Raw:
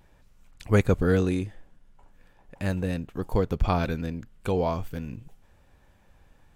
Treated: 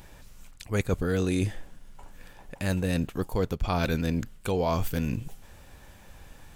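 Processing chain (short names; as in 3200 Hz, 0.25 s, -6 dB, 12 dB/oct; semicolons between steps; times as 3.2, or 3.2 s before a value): high shelf 3300 Hz +9 dB; reverse; compressor 12:1, threshold -31 dBFS, peak gain reduction 17.5 dB; reverse; gain +8.5 dB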